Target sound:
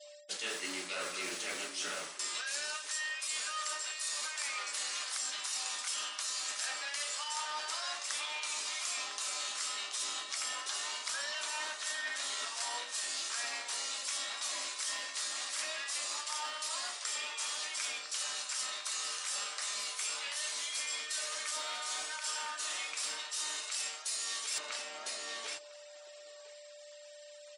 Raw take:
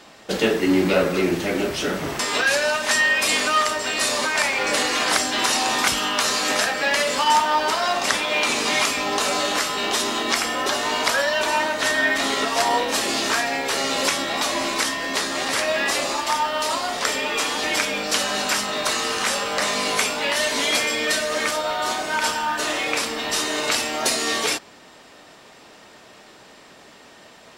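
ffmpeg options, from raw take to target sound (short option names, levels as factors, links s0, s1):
-filter_complex "[0:a]aderivative,aresample=22050,aresample=44100,asplit=2[s0][s1];[s1]acrusher=bits=6:mix=0:aa=0.000001,volume=0.631[s2];[s0][s2]amix=inputs=2:normalize=0,asplit=2[s3][s4];[s4]adelay=1005,lowpass=f=1300:p=1,volume=0.501,asplit=2[s5][s6];[s6]adelay=1005,lowpass=f=1300:p=1,volume=0.17,asplit=2[s7][s8];[s8]adelay=1005,lowpass=f=1300:p=1,volume=0.17[s9];[s3][s5][s7][s9]amix=inputs=4:normalize=0,aeval=exprs='val(0)+0.00282*sin(2*PI*590*n/s)':c=same,adynamicequalizer=threshold=0.00501:dfrequency=1200:dqfactor=2.5:tfrequency=1200:tqfactor=2.5:attack=5:release=100:ratio=0.375:range=2.5:mode=boostabove:tftype=bell,areverse,acompressor=threshold=0.0178:ratio=10,areverse,afftfilt=real='re*gte(hypot(re,im),0.00178)':imag='im*gte(hypot(re,im),0.00178)':win_size=1024:overlap=0.75"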